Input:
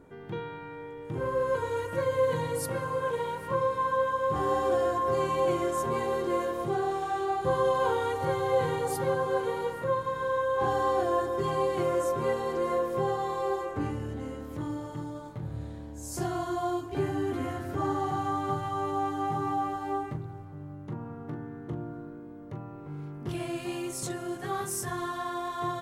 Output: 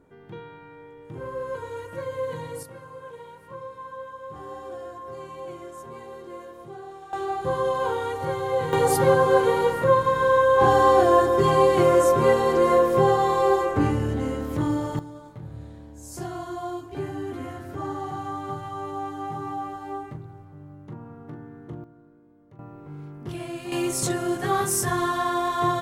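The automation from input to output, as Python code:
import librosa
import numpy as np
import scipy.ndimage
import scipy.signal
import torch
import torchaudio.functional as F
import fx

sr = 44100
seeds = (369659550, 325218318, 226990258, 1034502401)

y = fx.gain(x, sr, db=fx.steps((0.0, -4.0), (2.63, -11.0), (7.13, 1.0), (8.73, 10.0), (14.99, -2.0), (21.84, -12.0), (22.59, 0.0), (23.72, 9.0)))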